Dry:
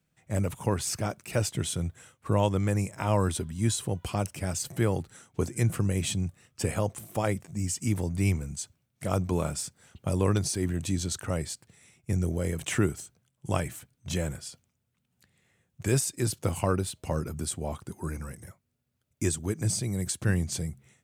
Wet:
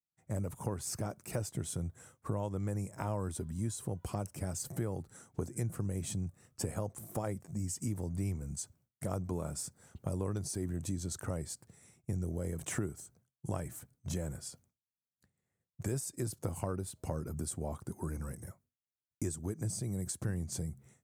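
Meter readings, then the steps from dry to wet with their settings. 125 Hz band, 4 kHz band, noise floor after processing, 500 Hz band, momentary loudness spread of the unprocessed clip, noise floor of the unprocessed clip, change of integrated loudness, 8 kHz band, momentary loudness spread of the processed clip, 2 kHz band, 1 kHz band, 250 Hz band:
−8.0 dB, −12.5 dB, below −85 dBFS, −9.5 dB, 11 LU, −77 dBFS, −8.5 dB, −7.5 dB, 7 LU, −13.5 dB, −10.0 dB, −8.0 dB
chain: downward expander −58 dBFS
parametric band 2,900 Hz −12 dB 1.5 octaves
downward compressor 3 to 1, threshold −35 dBFS, peak gain reduction 12 dB

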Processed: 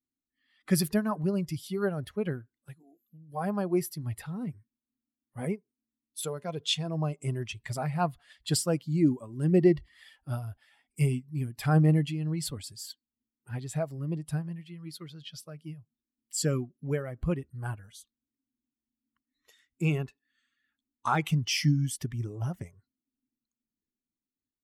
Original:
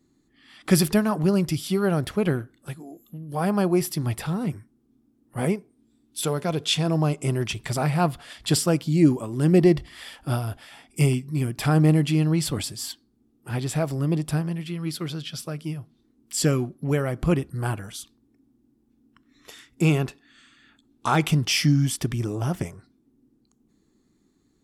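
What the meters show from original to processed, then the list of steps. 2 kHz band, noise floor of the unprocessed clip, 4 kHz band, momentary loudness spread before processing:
−7.5 dB, −66 dBFS, −6.5 dB, 15 LU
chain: spectral dynamics exaggerated over time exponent 1.5
amplitude modulation by smooth noise, depth 65%

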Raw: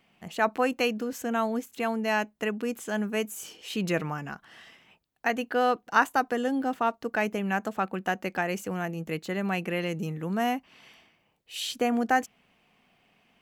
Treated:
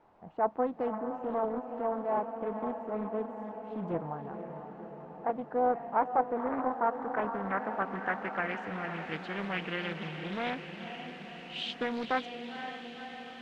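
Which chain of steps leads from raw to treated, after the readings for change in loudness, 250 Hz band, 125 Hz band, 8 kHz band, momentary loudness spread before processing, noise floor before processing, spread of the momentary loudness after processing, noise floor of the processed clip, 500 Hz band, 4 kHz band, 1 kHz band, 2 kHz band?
−5.5 dB, −7.0 dB, −7.0 dB, below −20 dB, 9 LU, −69 dBFS, 12 LU, −47 dBFS, −3.0 dB, −5.5 dB, −3.0 dB, −7.0 dB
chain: background noise white −47 dBFS
low-pass filter sweep 840 Hz → 3,000 Hz, 0:06.30–0:09.14
feedback delay with all-pass diffusion 517 ms, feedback 68%, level −8 dB
highs frequency-modulated by the lows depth 0.46 ms
level −8.5 dB

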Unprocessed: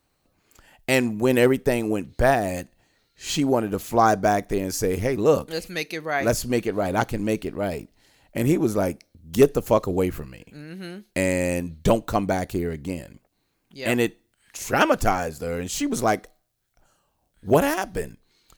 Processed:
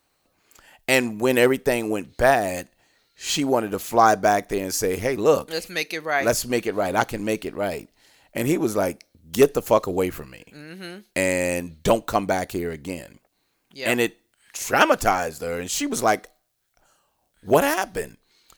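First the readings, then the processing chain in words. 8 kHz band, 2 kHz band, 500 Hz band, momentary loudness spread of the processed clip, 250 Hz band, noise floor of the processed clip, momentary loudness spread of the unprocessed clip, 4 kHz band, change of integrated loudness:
+3.5 dB, +3.0 dB, +1.0 dB, 15 LU, −2.0 dB, −70 dBFS, 15 LU, +3.5 dB, +1.0 dB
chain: low-shelf EQ 290 Hz −10 dB
level +3.5 dB

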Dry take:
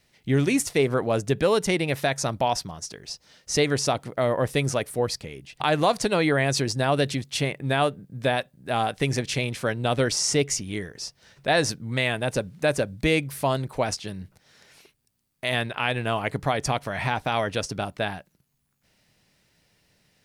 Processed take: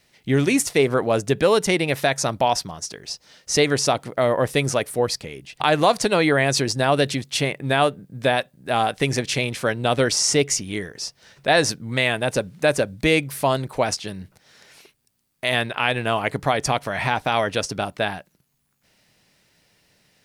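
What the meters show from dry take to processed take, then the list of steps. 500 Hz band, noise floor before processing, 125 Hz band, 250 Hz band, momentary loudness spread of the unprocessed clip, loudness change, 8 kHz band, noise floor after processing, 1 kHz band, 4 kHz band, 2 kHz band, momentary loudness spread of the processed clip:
+4.0 dB, −69 dBFS, +1.0 dB, +3.0 dB, 10 LU, +4.0 dB, +4.5 dB, −67 dBFS, +4.5 dB, +4.5 dB, +4.5 dB, 10 LU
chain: low-shelf EQ 160 Hz −6 dB
level +4.5 dB

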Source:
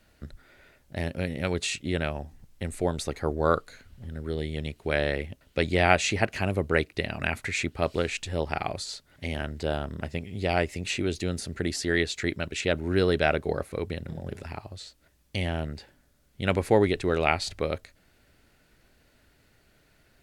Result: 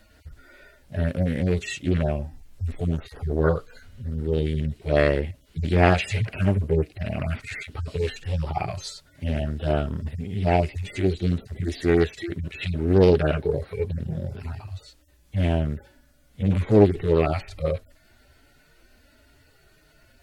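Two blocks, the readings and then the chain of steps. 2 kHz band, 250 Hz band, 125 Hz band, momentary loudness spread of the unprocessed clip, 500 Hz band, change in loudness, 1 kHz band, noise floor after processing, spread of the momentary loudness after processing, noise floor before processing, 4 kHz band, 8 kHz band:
−3.0 dB, +5.0 dB, +8.0 dB, 15 LU, +3.5 dB, +3.5 dB, 0.0 dB, −58 dBFS, 14 LU, −64 dBFS, −4.5 dB, −8.0 dB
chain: harmonic-percussive split with one part muted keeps harmonic
highs frequency-modulated by the lows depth 0.41 ms
level +8.5 dB

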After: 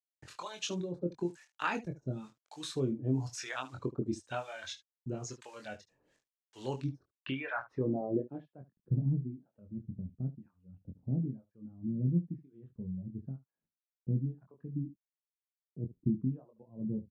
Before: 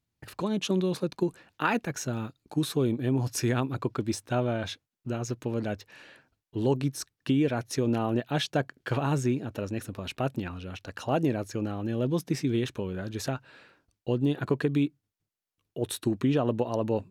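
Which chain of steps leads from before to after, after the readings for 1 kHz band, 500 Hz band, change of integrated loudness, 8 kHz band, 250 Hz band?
−9.0 dB, −11.0 dB, −8.0 dB, −10.0 dB, −8.5 dB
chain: reverb reduction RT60 1.5 s
de-essing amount 70%
high-shelf EQ 6,400 Hz −4 dB
bit-depth reduction 10 bits, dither none
two-band tremolo in antiphase 1 Hz, depth 100%, crossover 670 Hz
ambience of single reflections 23 ms −5 dB, 74 ms −17 dB
low-pass filter sweep 7,000 Hz → 190 Hz, 0:06.80–0:08.62
level −3.5 dB

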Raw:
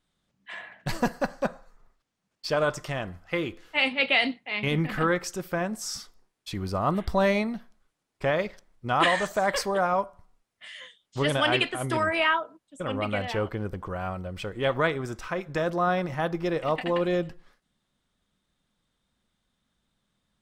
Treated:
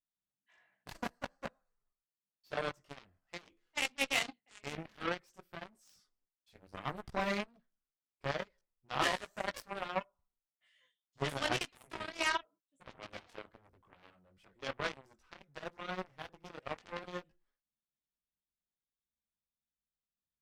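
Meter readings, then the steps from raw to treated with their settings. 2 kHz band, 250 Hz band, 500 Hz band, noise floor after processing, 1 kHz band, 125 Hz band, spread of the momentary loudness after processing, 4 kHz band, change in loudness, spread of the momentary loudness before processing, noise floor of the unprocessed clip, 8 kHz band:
−11.5 dB, −16.5 dB, −15.5 dB, below −85 dBFS, −12.5 dB, −17.0 dB, 19 LU, −10.0 dB, −11.5 dB, 15 LU, −80 dBFS, −8.0 dB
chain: multi-voice chorus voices 4, 0.51 Hz, delay 18 ms, depth 4.1 ms
harmonic generator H 7 −16 dB, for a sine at −11 dBFS
level −5.5 dB

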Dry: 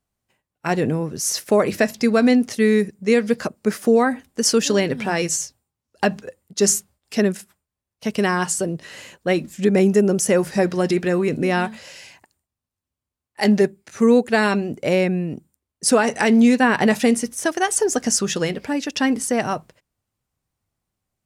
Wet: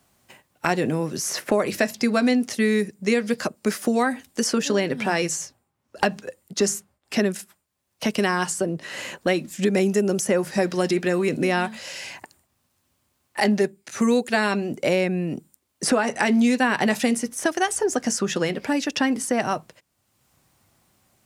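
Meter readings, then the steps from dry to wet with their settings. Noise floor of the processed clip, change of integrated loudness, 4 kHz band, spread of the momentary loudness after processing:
−73 dBFS, −3.5 dB, −2.0 dB, 8 LU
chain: high-pass filter 170 Hz 6 dB per octave
notch filter 450 Hz, Q 12
multiband upward and downward compressor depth 70%
level −2 dB

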